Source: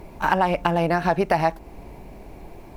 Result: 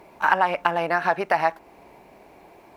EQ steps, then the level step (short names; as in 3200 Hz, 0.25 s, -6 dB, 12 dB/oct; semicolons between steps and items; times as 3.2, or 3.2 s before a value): HPF 970 Hz 6 dB/oct; high shelf 2800 Hz -8.5 dB; dynamic EQ 1500 Hz, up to +5 dB, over -36 dBFS, Q 0.93; +2.5 dB